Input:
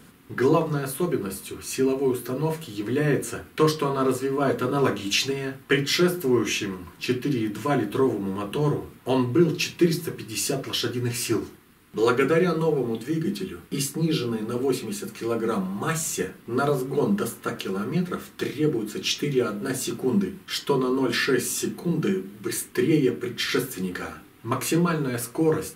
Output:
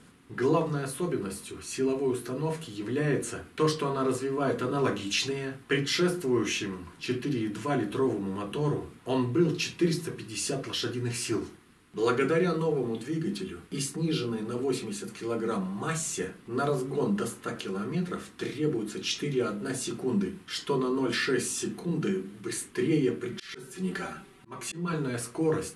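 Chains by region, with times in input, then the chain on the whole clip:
23.32–24.93 s: comb 5.2 ms, depth 77% + slow attack 345 ms
whole clip: steep low-pass 11 kHz 48 dB/octave; transient shaper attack -2 dB, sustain +2 dB; trim -4.5 dB

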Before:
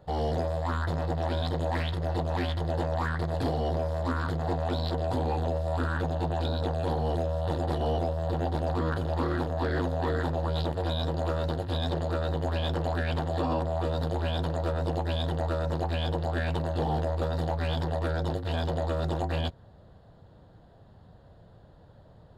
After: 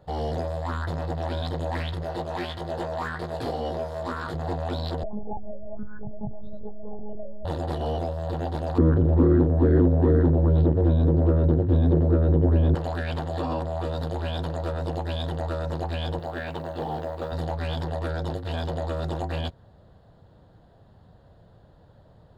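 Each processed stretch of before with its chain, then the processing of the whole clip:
2.03–4.34 s: tone controls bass -5 dB, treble 0 dB + doubling 17 ms -5.5 dB
5.03–7.45 s: spectral contrast enhancement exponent 2.3 + monotone LPC vocoder at 8 kHz 210 Hz
8.78–12.75 s: Bessel low-pass 1.3 kHz + resonant low shelf 520 Hz +10.5 dB, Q 1.5
16.19–17.32 s: high-pass 210 Hz 6 dB/octave + treble shelf 6.2 kHz -10 dB + companded quantiser 8-bit
whole clip: none

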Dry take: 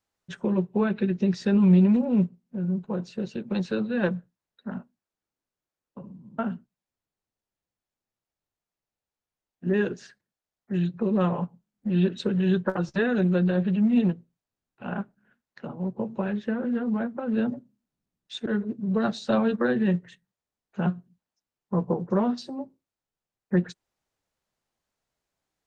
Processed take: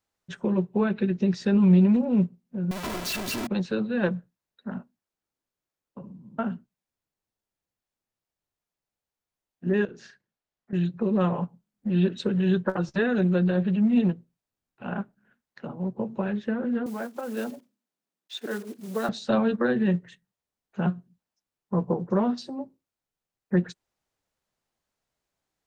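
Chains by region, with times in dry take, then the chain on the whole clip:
2.71–3.47 s: one-bit comparator + comb 3 ms, depth 60%
9.85–10.73 s: distance through air 73 m + compression 10:1, threshold -39 dBFS + doubling 36 ms -6 dB
16.86–19.09 s: block-companded coder 5-bit + high-pass 350 Hz
whole clip: none

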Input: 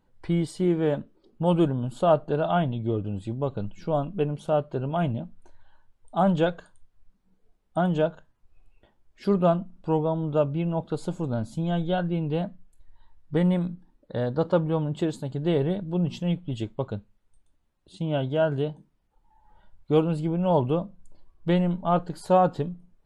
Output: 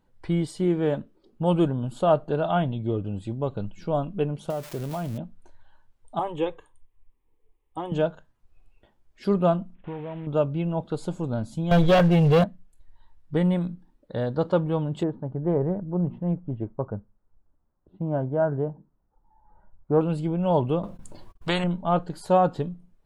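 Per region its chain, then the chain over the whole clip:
4.50–5.18 s: zero-crossing glitches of -20.5 dBFS + treble shelf 2.9 kHz -9.5 dB + compression 5:1, threshold -26 dBFS
6.19–7.92 s: peaking EQ 5.7 kHz -4 dB 0.86 oct + static phaser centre 970 Hz, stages 8
9.75–10.27 s: CVSD coder 16 kbps + compression, threshold -31 dBFS
11.71–12.44 s: comb 1.8 ms, depth 78% + waveshaping leveller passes 3 + tape noise reduction on one side only encoder only
15.03–20.01 s: low-pass 1.4 kHz 24 dB/octave + loudspeaker Doppler distortion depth 0.12 ms
20.83–21.64 s: gate -52 dBFS, range -35 dB + spectrum-flattening compressor 2:1
whole clip: none

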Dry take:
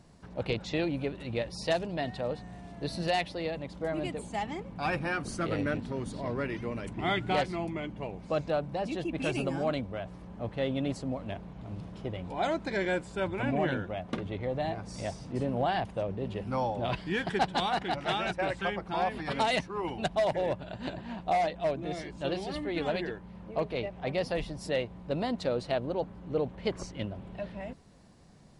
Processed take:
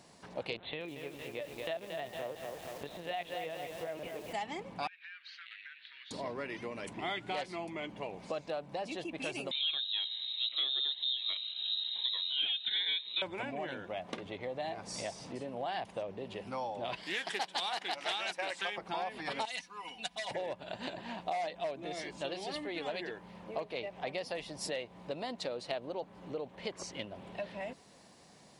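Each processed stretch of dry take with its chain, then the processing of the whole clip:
0.57–4.33 s: LPC vocoder at 8 kHz pitch kept + bit-crushed delay 229 ms, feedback 55%, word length 8-bit, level -7 dB
4.87–6.11 s: elliptic band-pass 1.6–3.9 kHz, stop band 50 dB + compression 8:1, threshold -50 dBFS
9.51–13.22 s: frequency inversion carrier 3.9 kHz + Shepard-style phaser rising 1.1 Hz
17.03–18.78 s: high-pass 160 Hz 24 dB/octave + tilt EQ +2.5 dB/octave + loudspeaker Doppler distortion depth 0.13 ms
19.45–20.31 s: amplifier tone stack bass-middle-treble 5-5-5 + comb 4.1 ms, depth 84%
whole clip: compression, threshold -37 dBFS; high-pass 710 Hz 6 dB/octave; peaking EQ 1.4 kHz -4.5 dB 0.6 oct; trim +6.5 dB

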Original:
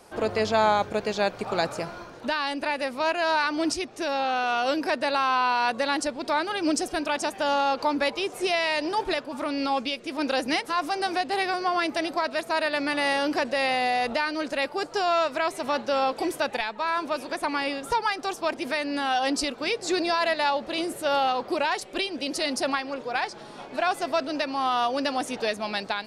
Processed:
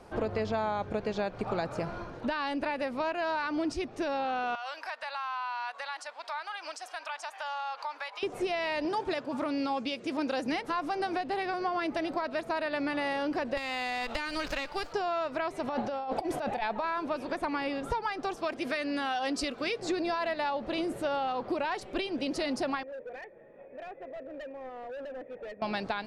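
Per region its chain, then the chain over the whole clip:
4.55–8.23 s: high-pass 830 Hz 24 dB/octave + compression 3:1, threshold -33 dBFS
8.85–10.52 s: dynamic bell 7.3 kHz, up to +7 dB, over -50 dBFS, Q 1 + high-pass 95 Hz
13.57–14.93 s: frequency weighting ITU-R 468 + compression 10:1, threshold -24 dBFS + sliding maximum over 3 samples
15.69–16.84 s: peaking EQ 740 Hz +11.5 dB 0.31 oct + compressor with a negative ratio -30 dBFS
18.37–19.80 s: tilt EQ +1.5 dB/octave + band-stop 900 Hz, Q 7.5
22.83–25.62 s: cascade formant filter e + hard clipper -38.5 dBFS
whole clip: low-pass 2.2 kHz 6 dB/octave; bass shelf 140 Hz +9.5 dB; compression, threshold -28 dBFS

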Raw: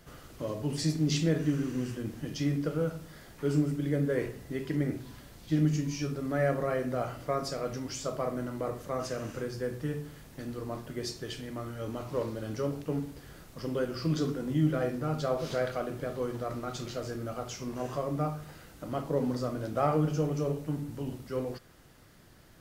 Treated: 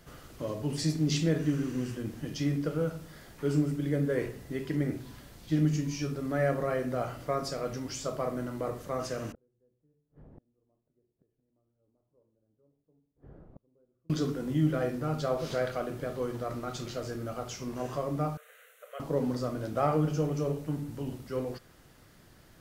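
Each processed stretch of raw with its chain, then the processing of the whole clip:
9.32–14.10 s: Chebyshev low-pass 600 Hz + inverted gate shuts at -37 dBFS, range -37 dB
18.37–19.00 s: brick-wall FIR high-pass 420 Hz + static phaser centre 2.1 kHz, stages 4
whole clip: none

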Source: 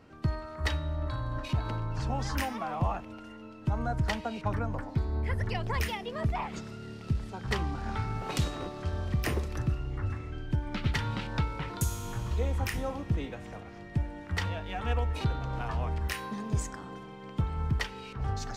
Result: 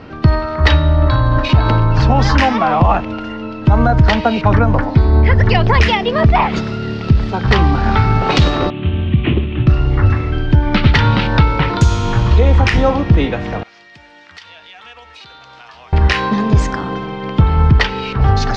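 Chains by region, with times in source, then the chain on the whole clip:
8.70–9.67 s: CVSD coder 16 kbps + high-pass 95 Hz + high-order bell 950 Hz -14 dB 2.5 oct
13.63–15.93 s: differentiator + compression 2.5:1, threshold -58 dBFS
whole clip: low-pass 4.9 kHz 24 dB/octave; loudness maximiser +22 dB; trim -1 dB

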